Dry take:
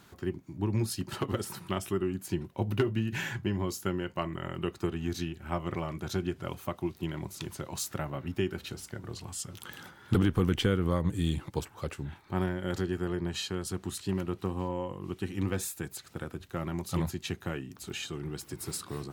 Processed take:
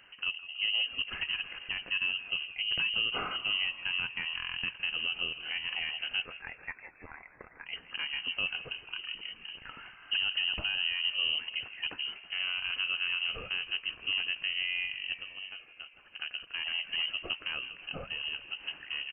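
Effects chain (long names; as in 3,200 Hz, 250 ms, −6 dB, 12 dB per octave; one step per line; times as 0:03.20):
0:06.22–0:07.66: high-pass filter 820 Hz 24 dB per octave
0:15.18–0:16.20: downward compressor 4 to 1, threshold −44 dBFS, peak gain reduction 15.5 dB
brickwall limiter −22.5 dBFS, peak gain reduction 9.5 dB
on a send: echo with shifted repeats 162 ms, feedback 63%, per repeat +57 Hz, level −15 dB
on the sum: voice inversion scrambler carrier 3,000 Hz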